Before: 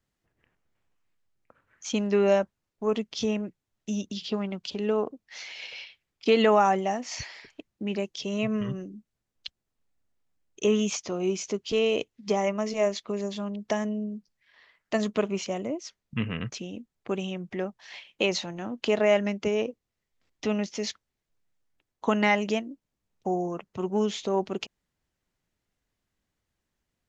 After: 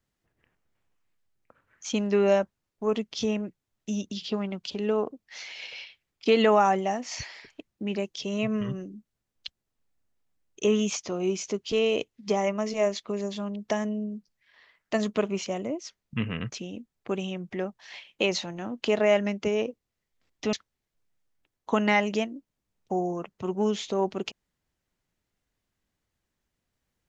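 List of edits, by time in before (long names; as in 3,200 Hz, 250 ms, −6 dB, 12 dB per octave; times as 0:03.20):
0:20.53–0:20.88: remove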